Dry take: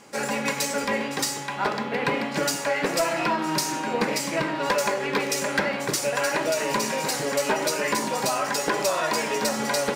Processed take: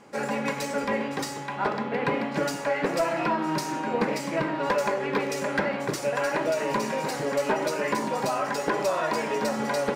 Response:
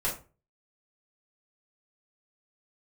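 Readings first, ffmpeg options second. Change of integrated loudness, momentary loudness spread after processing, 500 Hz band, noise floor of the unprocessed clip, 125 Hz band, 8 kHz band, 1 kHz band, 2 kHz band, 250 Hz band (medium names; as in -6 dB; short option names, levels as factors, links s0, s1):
-2.5 dB, 3 LU, -0.5 dB, -32 dBFS, 0.0 dB, -10.5 dB, -1.5 dB, -3.5 dB, 0.0 dB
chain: -af "highshelf=f=2800:g=-12"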